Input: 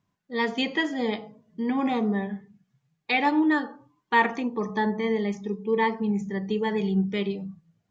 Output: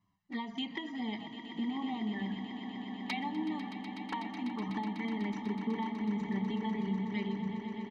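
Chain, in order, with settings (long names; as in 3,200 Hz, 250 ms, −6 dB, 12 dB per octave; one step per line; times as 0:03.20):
low-pass filter 5,100 Hz 12 dB per octave
mains-hum notches 50/100/150/200 Hz
comb filter 1 ms, depth 95%
downward compressor 12 to 1, threshold −30 dBFS, peak gain reduction 19.5 dB
flanger swept by the level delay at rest 10.6 ms, full sweep at −29.5 dBFS
echo that builds up and dies away 124 ms, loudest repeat 8, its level −13.5 dB
level −2 dB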